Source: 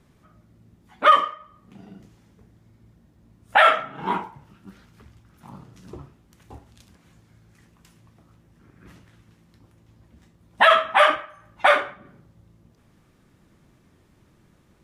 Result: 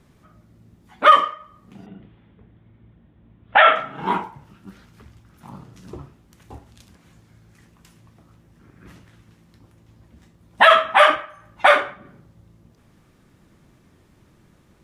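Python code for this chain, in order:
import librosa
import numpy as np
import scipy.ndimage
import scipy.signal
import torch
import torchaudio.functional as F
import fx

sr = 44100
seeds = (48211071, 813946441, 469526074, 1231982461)

y = fx.cheby1_lowpass(x, sr, hz=3500.0, order=5, at=(1.86, 3.76))
y = y * librosa.db_to_amplitude(3.0)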